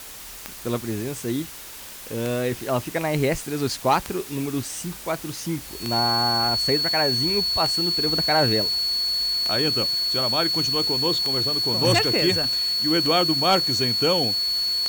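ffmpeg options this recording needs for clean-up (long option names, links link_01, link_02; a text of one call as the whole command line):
ffmpeg -i in.wav -af "adeclick=threshold=4,bandreject=frequency=4400:width=30,afwtdn=0.011" out.wav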